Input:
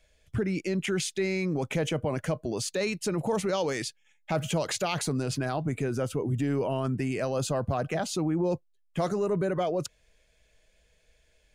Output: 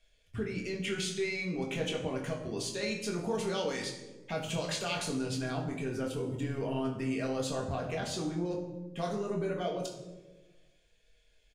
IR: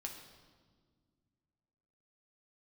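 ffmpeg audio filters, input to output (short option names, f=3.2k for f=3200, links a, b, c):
-filter_complex "[0:a]equalizer=f=3.4k:w=1.3:g=6,asplit=2[a][b];[b]adelay=23,volume=-6.5dB[c];[a][c]amix=inputs=2:normalize=0[d];[1:a]atrim=start_sample=2205,asetrate=74970,aresample=44100[e];[d][e]afir=irnorm=-1:irlink=0"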